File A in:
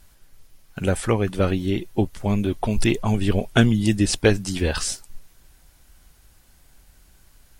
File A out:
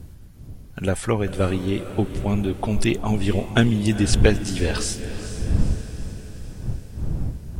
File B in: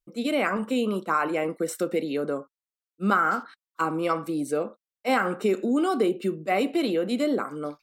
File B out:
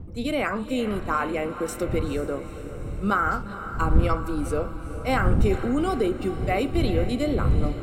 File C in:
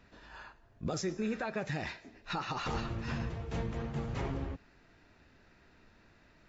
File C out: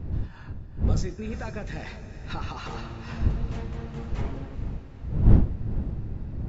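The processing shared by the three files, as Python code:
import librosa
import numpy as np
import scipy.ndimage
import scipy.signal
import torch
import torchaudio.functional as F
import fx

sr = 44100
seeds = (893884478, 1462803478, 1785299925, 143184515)

y = fx.dmg_wind(x, sr, seeds[0], corner_hz=94.0, level_db=-26.0)
y = fx.echo_diffused(y, sr, ms=454, feedback_pct=58, wet_db=-12)
y = F.gain(torch.from_numpy(y), -1.0).numpy()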